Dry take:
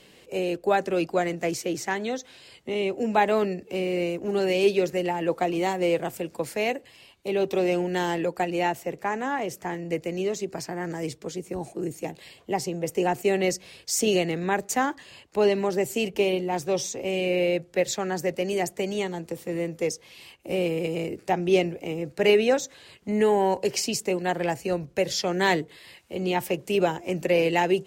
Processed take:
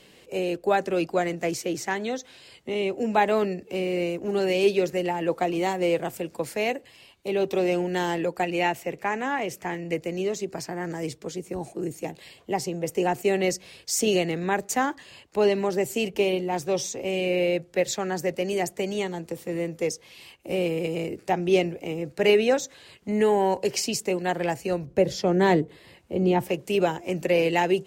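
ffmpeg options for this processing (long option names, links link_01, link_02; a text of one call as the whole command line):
ffmpeg -i in.wav -filter_complex "[0:a]asettb=1/sr,asplit=3[link_01][link_02][link_03];[link_01]atrim=end=8.434[link_04];[link_02]atrim=start=8.43:end=9.94,asetpts=PTS-STARTPTS,afade=type=in:duration=0.004:curve=qsin,afade=type=out:start_time=1.506:duration=0.004:curve=qsin,equalizer=frequency=2400:width_type=o:width=0.77:gain=5.5[link_05];[link_03]atrim=start=9.936[link_06];[link_04][link_05]acrossfade=duration=0.004:curve1=hsin:curve2=qsin[link_07];[link_07][link_06]acrossfade=duration=0.004:curve1=qsin:curve2=hsin,asettb=1/sr,asplit=3[link_08][link_09][link_10];[link_08]atrim=end=24.864[link_11];[link_09]atrim=start=24.86:end=26.49,asetpts=PTS-STARTPTS,afade=type=in:duration=0.004:curve=qsin,afade=type=out:start_time=1.626:duration=0.004:curve=qsin,tiltshelf=frequency=970:gain=7[link_12];[link_10]atrim=start=26.486[link_13];[link_11][link_12]acrossfade=duration=0.004:curve1=hsin:curve2=qsin[link_14];[link_14][link_13]acrossfade=duration=0.004:curve1=qsin:curve2=hsin" out.wav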